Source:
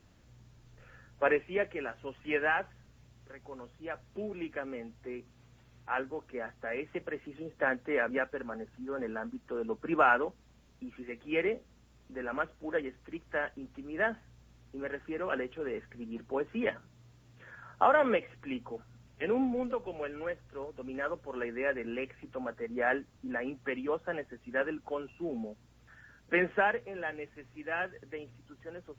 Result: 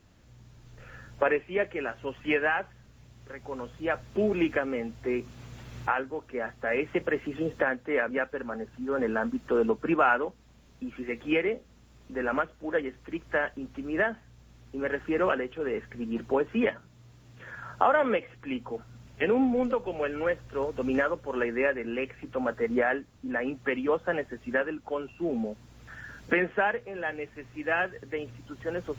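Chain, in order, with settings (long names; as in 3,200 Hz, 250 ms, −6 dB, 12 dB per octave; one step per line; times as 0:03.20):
camcorder AGC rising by 7.4 dB per second
level +1.5 dB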